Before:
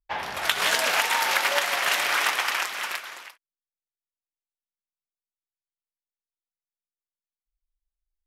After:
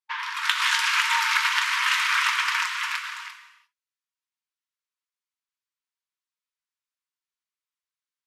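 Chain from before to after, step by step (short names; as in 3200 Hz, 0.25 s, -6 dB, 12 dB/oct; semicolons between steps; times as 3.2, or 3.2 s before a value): in parallel at -2 dB: compressor, threshold -35 dBFS, peak gain reduction 16.5 dB; on the sum: brick-wall FIR high-pass 900 Hz; air absorption 52 m; non-linear reverb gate 0.38 s falling, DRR 5.5 dB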